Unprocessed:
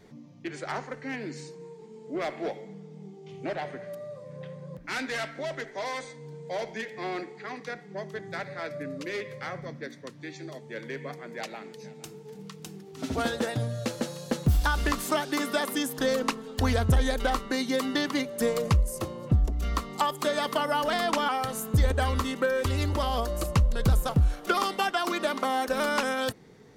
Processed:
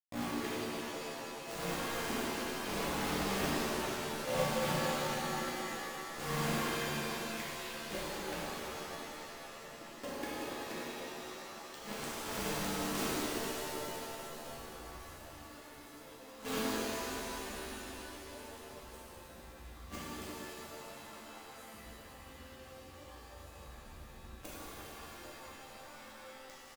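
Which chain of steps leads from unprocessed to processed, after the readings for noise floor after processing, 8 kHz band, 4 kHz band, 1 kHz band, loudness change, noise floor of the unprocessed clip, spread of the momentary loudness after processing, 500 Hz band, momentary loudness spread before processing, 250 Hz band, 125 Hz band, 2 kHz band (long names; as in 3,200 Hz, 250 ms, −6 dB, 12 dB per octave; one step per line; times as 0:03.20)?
−53 dBFS, −3.5 dB, −6.5 dB, −10.0 dB, −9.5 dB, −48 dBFS, 17 LU, −10.0 dB, 16 LU, −9.0 dB, −16.5 dB, −8.5 dB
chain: comb filter 3.6 ms, depth 51%
downward compressor 12 to 1, threshold −31 dBFS, peak gain reduction 15.5 dB
bit reduction 7 bits
gate with flip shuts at −32 dBFS, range −30 dB
reverb with rising layers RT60 3.4 s, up +7 semitones, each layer −2 dB, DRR −10 dB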